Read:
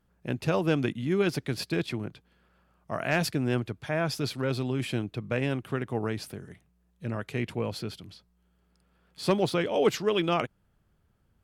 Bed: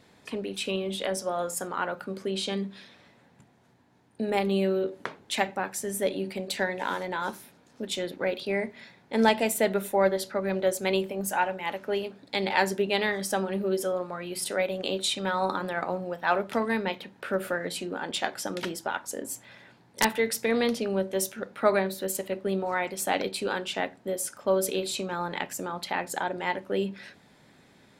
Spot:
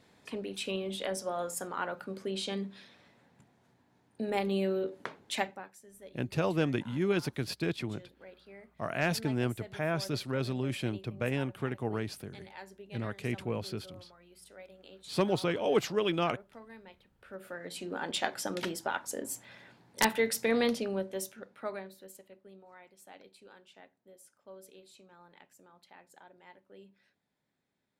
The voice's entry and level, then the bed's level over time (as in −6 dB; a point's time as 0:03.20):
5.90 s, −3.5 dB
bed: 0:05.40 −5 dB
0:05.80 −23.5 dB
0:17.07 −23.5 dB
0:17.99 −2.5 dB
0:20.68 −2.5 dB
0:22.53 −26 dB